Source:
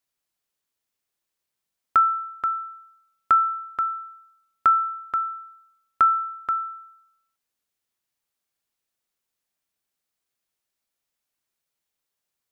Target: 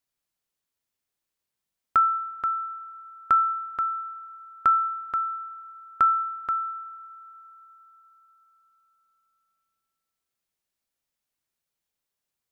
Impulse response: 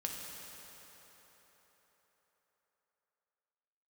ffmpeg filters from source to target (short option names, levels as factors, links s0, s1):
-filter_complex "[0:a]lowshelf=f=210:g=4.5,asplit=2[s0][s1];[1:a]atrim=start_sample=2205[s2];[s1][s2]afir=irnorm=-1:irlink=0,volume=0.133[s3];[s0][s3]amix=inputs=2:normalize=0,volume=0.668"